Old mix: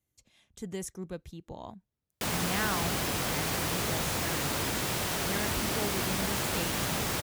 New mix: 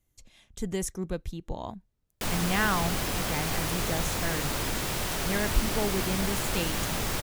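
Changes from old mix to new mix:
speech +6.0 dB
master: remove high-pass filter 74 Hz 12 dB per octave

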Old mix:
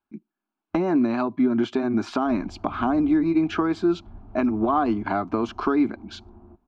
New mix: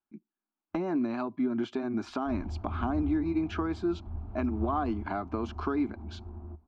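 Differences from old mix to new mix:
speech −8.5 dB
background: add parametric band 77 Hz +13 dB 0.38 octaves

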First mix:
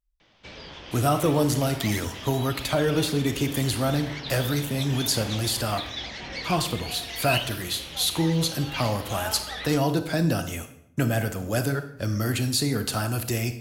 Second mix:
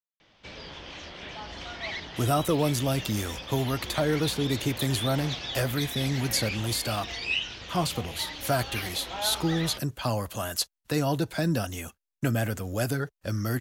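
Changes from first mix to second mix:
speech: entry +1.25 s
reverb: off

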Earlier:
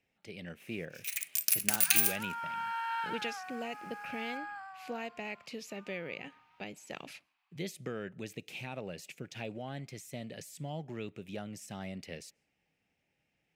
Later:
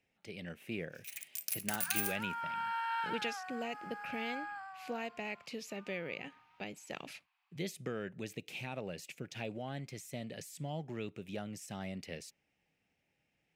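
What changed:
first sound −9.5 dB
reverb: off

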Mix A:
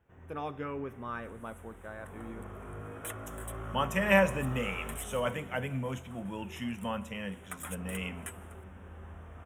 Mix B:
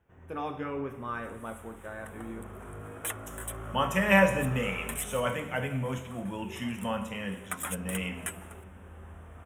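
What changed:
speech: send +10.5 dB
second sound +7.0 dB

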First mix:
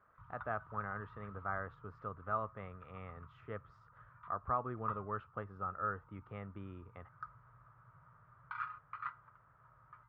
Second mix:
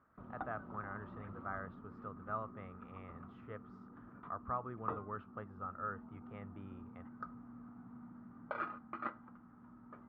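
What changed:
speech −4.0 dB
background: remove Chebyshev band-stop filter 150–930 Hz, order 5

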